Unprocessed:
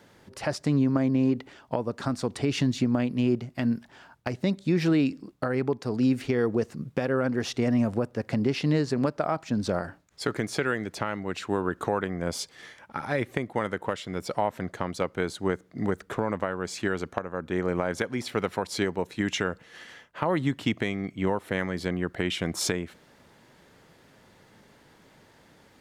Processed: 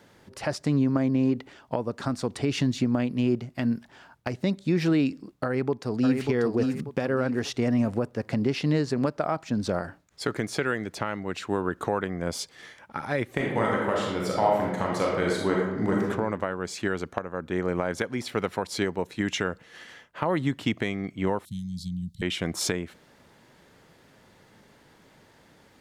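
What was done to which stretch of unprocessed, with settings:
5.44–6.21 echo throw 0.59 s, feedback 35%, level -4.5 dB
13.33–16.04 reverb throw, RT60 1.1 s, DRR -3 dB
21.45–22.22 Chebyshev band-stop 200–3700 Hz, order 4

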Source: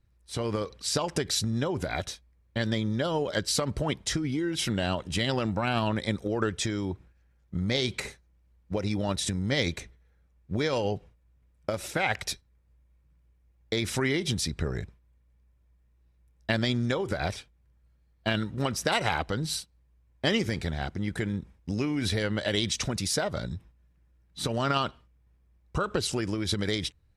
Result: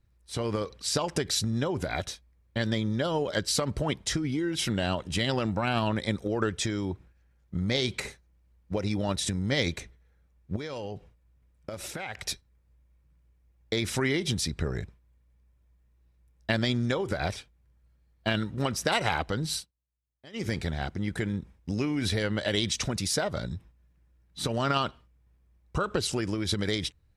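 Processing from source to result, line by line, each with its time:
10.56–12.26 compressor 5:1, threshold -33 dBFS
19.58–20.47 dip -24 dB, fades 0.14 s

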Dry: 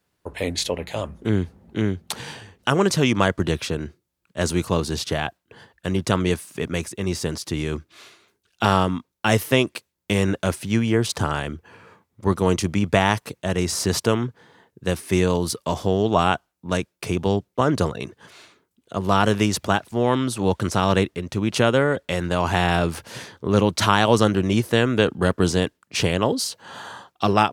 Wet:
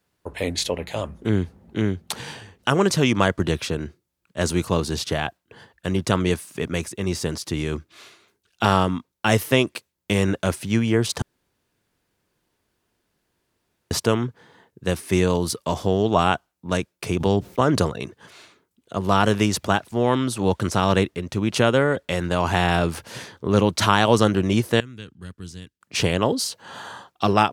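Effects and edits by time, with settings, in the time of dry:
11.22–13.91 room tone
17.2–17.82 fast leveller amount 50%
24.8–25.81 passive tone stack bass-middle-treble 6-0-2

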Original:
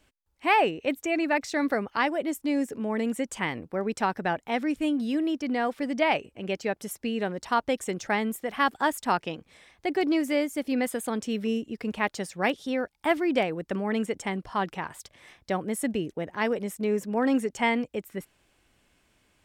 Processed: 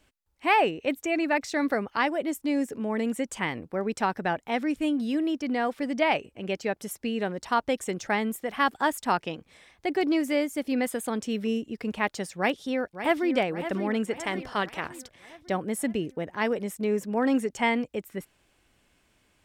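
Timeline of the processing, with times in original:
12.37–13.35 echo throw 0.56 s, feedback 55%, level -10.5 dB
14.23–14.87 spectral limiter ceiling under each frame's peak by 13 dB

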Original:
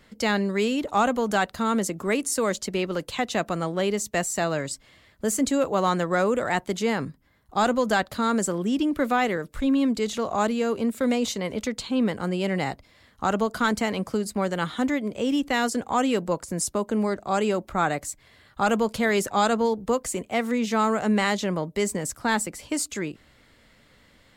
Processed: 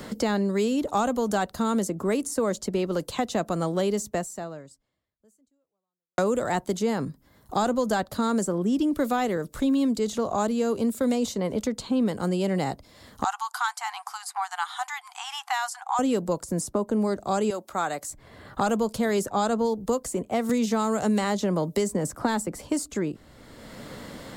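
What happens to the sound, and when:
4.11–6.18 fade out exponential
13.24–15.99 brick-wall FIR band-pass 720–13000 Hz
17.5–18.1 HPF 840 Hz 6 dB/oct
20.49–22.62 three-band squash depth 70%
whole clip: bell 2300 Hz -10 dB 1.5 oct; three-band squash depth 70%

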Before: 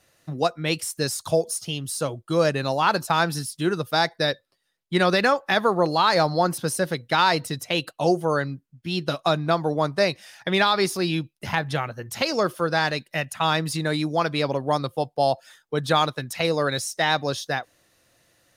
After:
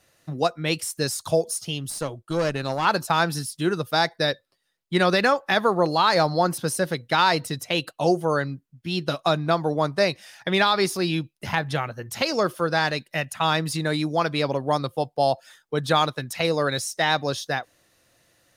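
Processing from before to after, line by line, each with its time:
1.9–2.85 tube stage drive 17 dB, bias 0.6

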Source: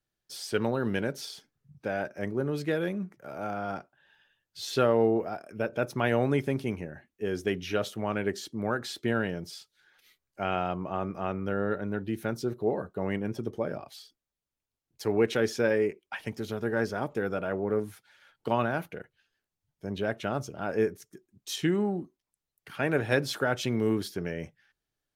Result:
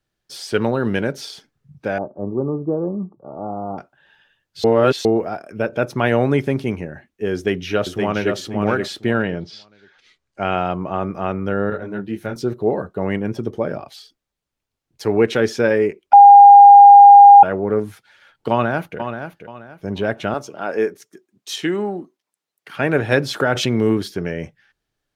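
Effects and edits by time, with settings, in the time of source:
1.98–3.78 rippled Chebyshev low-pass 1200 Hz, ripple 3 dB
4.64–5.05 reverse
7.34–8.35 echo throw 0.52 s, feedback 20%, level -4 dB
9.22–10.43 LPF 4000 Hz -> 9800 Hz 24 dB/oct
11.7–12.36 detuned doubles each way 28 cents
16.13–17.43 bleep 808 Hz -10.5 dBFS
18.51–18.99 echo throw 0.48 s, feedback 30%, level -8.5 dB
20.34–22.74 Bessel high-pass 340 Hz
23.4–23.97 backwards sustainer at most 41 dB/s
whole clip: high shelf 8000 Hz -9 dB; gain +9 dB

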